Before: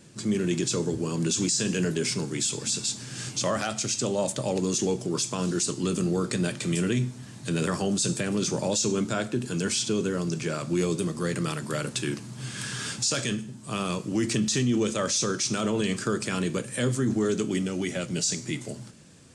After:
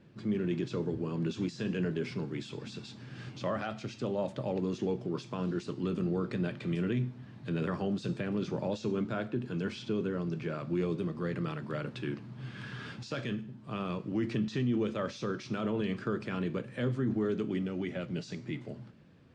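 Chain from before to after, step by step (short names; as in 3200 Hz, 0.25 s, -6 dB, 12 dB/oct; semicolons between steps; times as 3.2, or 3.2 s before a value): air absorption 350 m; gain -5 dB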